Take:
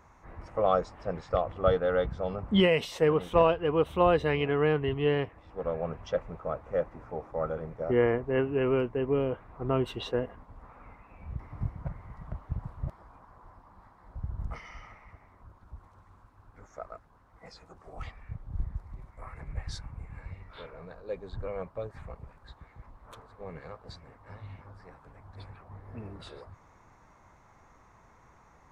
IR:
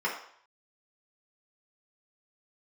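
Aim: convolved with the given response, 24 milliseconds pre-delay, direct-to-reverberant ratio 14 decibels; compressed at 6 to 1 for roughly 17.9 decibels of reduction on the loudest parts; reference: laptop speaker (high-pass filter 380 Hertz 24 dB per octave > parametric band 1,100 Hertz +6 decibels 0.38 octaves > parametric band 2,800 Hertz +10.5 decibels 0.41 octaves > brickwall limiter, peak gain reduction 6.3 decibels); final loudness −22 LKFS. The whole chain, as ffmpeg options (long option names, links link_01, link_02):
-filter_complex "[0:a]acompressor=threshold=-38dB:ratio=6,asplit=2[link_01][link_02];[1:a]atrim=start_sample=2205,adelay=24[link_03];[link_02][link_03]afir=irnorm=-1:irlink=0,volume=-23.5dB[link_04];[link_01][link_04]amix=inputs=2:normalize=0,highpass=frequency=380:width=0.5412,highpass=frequency=380:width=1.3066,equalizer=frequency=1100:width_type=o:width=0.38:gain=6,equalizer=frequency=2800:width_type=o:width=0.41:gain=10.5,volume=24dB,alimiter=limit=-7.5dB:level=0:latency=1"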